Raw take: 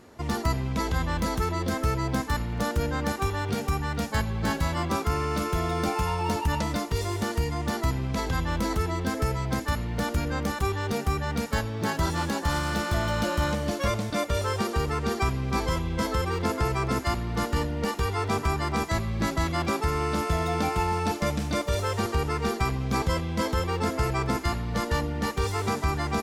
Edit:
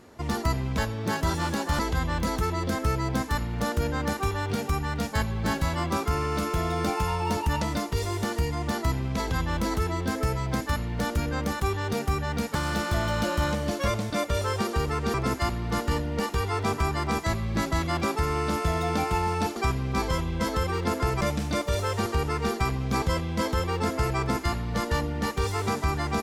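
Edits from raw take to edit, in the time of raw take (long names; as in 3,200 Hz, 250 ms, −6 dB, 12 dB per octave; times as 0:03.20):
0:11.54–0:12.55: move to 0:00.78
0:15.14–0:16.79: move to 0:21.21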